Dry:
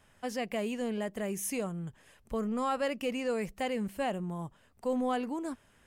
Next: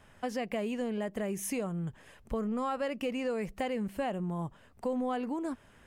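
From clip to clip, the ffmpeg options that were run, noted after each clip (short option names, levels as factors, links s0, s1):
-af "highshelf=f=3600:g=-7,acompressor=threshold=0.0126:ratio=3,volume=2"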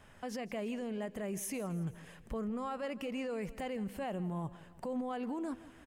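-af "alimiter=level_in=2.24:limit=0.0631:level=0:latency=1:release=62,volume=0.447,aecho=1:1:165|330|495|660:0.126|0.0655|0.034|0.0177"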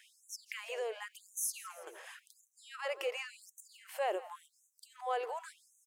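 -af "afftfilt=real='re*gte(b*sr/1024,330*pow(5900/330,0.5+0.5*sin(2*PI*0.91*pts/sr)))':imag='im*gte(b*sr/1024,330*pow(5900/330,0.5+0.5*sin(2*PI*0.91*pts/sr)))':win_size=1024:overlap=0.75,volume=2"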